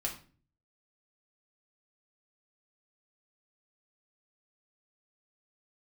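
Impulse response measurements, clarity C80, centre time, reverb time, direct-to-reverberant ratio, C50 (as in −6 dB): 14.0 dB, 20 ms, 0.40 s, −1.5 dB, 9.5 dB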